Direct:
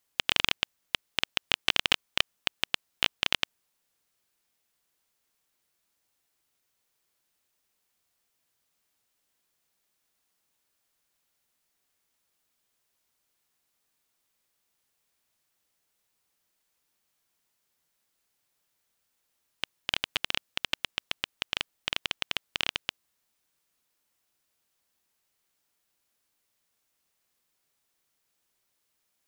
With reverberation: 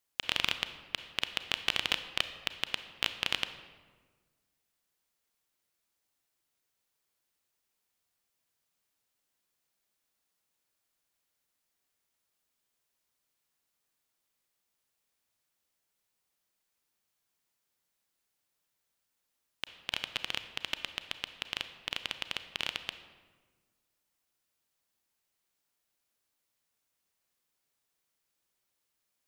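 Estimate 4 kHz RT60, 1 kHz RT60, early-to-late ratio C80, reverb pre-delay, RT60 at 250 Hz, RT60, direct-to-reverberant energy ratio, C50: 0.90 s, 1.4 s, 12.5 dB, 30 ms, 1.8 s, 1.5 s, 10.0 dB, 11.0 dB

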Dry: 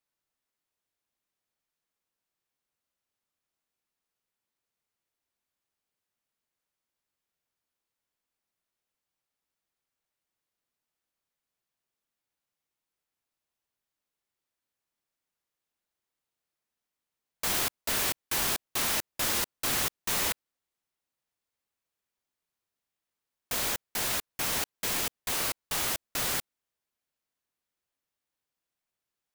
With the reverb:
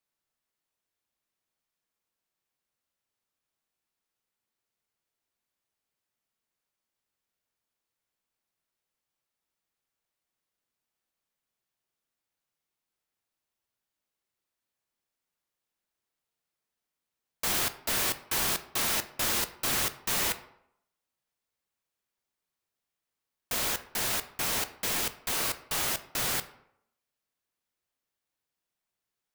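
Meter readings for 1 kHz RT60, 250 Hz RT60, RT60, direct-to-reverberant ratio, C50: 0.75 s, 0.70 s, 0.75 s, 10.0 dB, 14.5 dB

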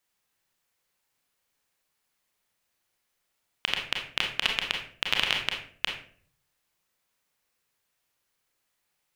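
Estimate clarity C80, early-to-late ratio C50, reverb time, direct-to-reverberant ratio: 10.0 dB, 5.0 dB, 0.50 s, 1.0 dB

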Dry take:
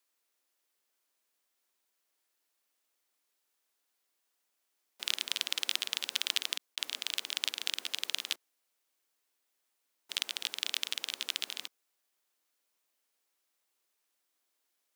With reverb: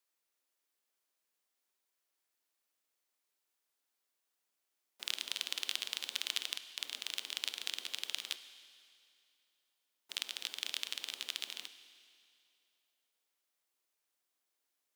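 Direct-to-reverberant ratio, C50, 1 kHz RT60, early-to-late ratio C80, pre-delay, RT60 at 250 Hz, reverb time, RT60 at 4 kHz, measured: 11.5 dB, 12.5 dB, 2.5 s, 13.0 dB, 24 ms, 2.5 s, 2.5 s, 2.5 s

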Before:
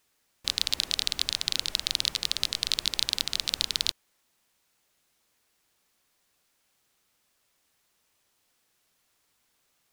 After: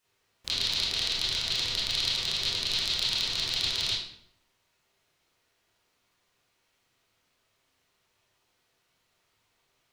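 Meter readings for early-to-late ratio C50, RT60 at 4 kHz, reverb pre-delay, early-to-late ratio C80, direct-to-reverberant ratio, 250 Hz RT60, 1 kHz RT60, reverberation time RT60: 0.0 dB, 0.50 s, 23 ms, 5.0 dB, −10.0 dB, 0.80 s, 0.65 s, 0.70 s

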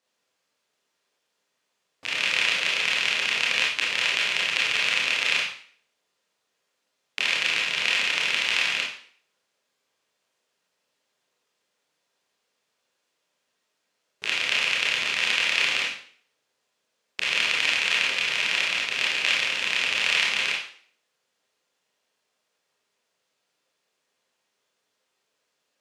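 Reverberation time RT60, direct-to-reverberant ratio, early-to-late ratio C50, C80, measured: 0.50 s, −4.5 dB, 3.5 dB, 8.0 dB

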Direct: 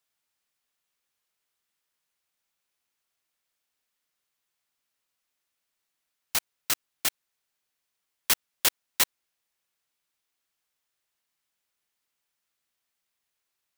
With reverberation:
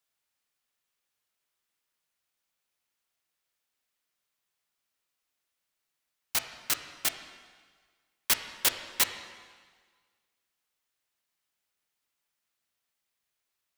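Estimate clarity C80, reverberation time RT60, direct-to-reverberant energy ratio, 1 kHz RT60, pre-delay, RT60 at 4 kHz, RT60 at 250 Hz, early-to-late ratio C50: 9.5 dB, 1.6 s, 7.0 dB, 1.6 s, 7 ms, 1.5 s, 1.6 s, 8.5 dB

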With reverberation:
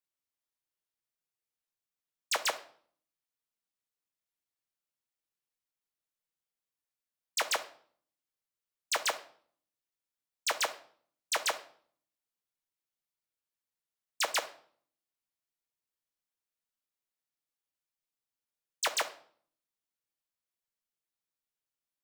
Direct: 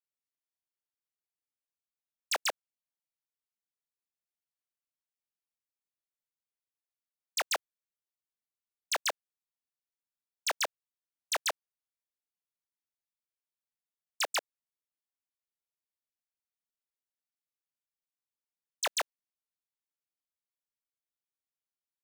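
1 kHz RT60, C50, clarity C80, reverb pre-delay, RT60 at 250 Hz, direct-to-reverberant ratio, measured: 0.50 s, 14.0 dB, 18.5 dB, 6 ms, 0.80 s, 6.5 dB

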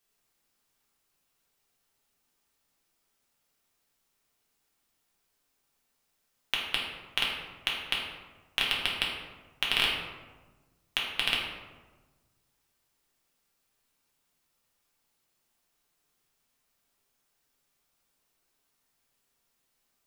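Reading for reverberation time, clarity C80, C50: 1.3 s, 4.5 dB, 2.0 dB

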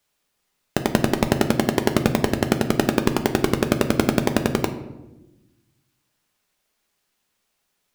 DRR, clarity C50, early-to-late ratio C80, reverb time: 6.5 dB, 11.0 dB, 13.0 dB, 1.0 s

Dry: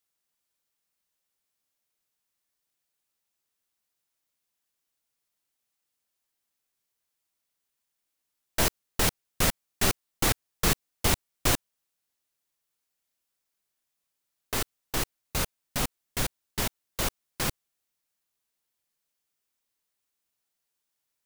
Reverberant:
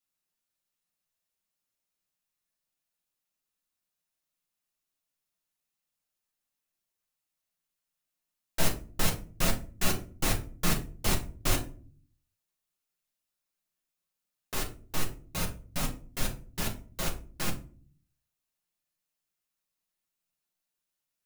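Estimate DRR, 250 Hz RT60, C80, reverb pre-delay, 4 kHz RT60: −1.0 dB, 0.75 s, 17.5 dB, 6 ms, 0.25 s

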